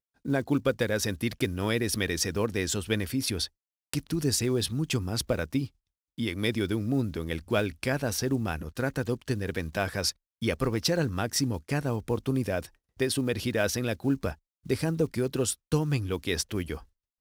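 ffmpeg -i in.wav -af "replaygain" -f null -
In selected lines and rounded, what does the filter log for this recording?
track_gain = +10.0 dB
track_peak = 0.251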